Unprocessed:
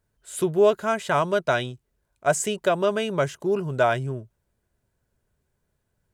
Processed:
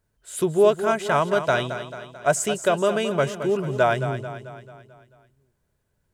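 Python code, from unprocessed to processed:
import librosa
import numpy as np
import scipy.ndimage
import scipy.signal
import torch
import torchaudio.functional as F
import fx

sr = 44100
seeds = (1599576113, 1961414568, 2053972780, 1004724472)

y = fx.echo_feedback(x, sr, ms=220, feedback_pct=52, wet_db=-10.5)
y = F.gain(torch.from_numpy(y), 1.0).numpy()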